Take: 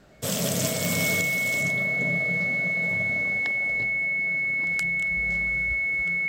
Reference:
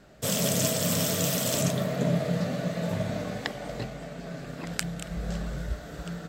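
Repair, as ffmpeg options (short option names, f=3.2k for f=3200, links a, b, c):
-af "adeclick=t=4,bandreject=f=2.2k:w=30,asetnsamples=n=441:p=0,asendcmd='1.21 volume volume 6dB',volume=0dB"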